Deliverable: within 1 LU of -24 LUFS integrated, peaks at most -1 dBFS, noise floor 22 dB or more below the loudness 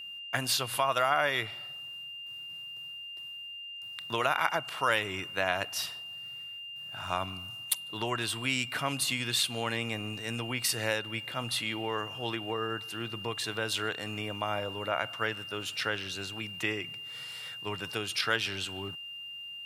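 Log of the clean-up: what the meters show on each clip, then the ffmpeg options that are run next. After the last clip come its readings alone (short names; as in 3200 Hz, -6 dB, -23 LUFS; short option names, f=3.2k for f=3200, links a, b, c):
steady tone 2800 Hz; tone level -40 dBFS; loudness -32.5 LUFS; peak -8.5 dBFS; loudness target -24.0 LUFS
-> -af "bandreject=f=2.8k:w=30"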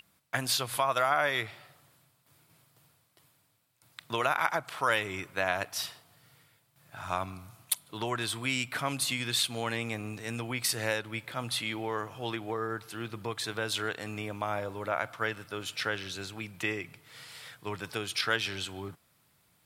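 steady tone none; loudness -32.0 LUFS; peak -8.0 dBFS; loudness target -24.0 LUFS
-> -af "volume=8dB,alimiter=limit=-1dB:level=0:latency=1"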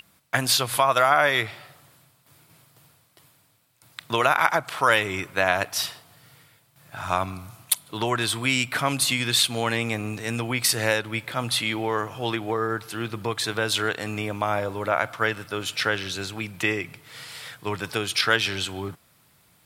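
loudness -24.0 LUFS; peak -1.0 dBFS; noise floor -61 dBFS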